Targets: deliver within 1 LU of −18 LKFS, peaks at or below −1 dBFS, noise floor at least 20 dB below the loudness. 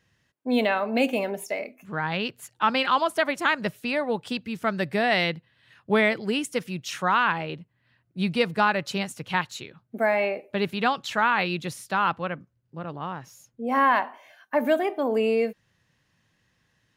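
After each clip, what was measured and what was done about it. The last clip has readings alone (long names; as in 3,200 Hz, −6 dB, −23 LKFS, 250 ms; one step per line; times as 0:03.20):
integrated loudness −25.5 LKFS; sample peak −9.5 dBFS; target loudness −18.0 LKFS
→ level +7.5 dB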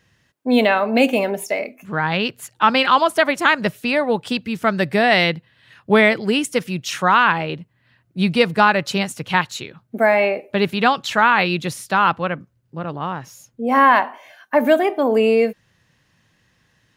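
integrated loudness −18.0 LKFS; sample peak −2.0 dBFS; background noise floor −63 dBFS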